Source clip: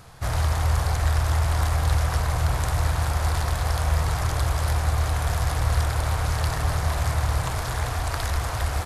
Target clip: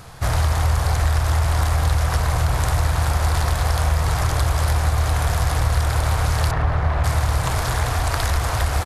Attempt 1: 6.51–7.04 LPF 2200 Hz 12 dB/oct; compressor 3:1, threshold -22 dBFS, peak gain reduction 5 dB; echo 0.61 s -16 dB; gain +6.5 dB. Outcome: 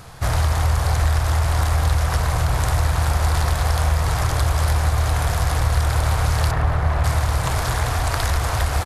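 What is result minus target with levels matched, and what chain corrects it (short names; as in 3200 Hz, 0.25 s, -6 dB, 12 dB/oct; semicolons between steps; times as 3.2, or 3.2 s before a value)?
echo-to-direct +10.5 dB
6.51–7.04 LPF 2200 Hz 12 dB/oct; compressor 3:1, threshold -22 dBFS, peak gain reduction 5 dB; echo 0.61 s -26.5 dB; gain +6.5 dB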